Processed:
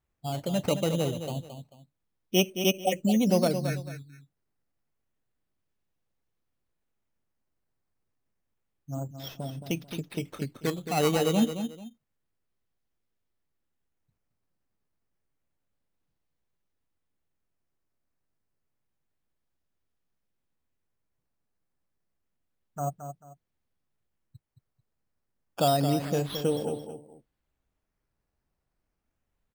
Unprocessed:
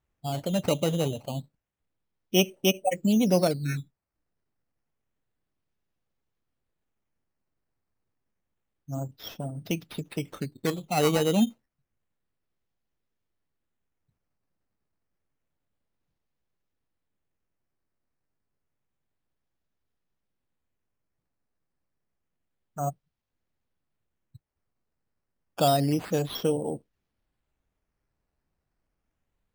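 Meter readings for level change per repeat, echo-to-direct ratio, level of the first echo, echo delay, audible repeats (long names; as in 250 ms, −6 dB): −11.0 dB, −8.5 dB, −9.0 dB, 220 ms, 2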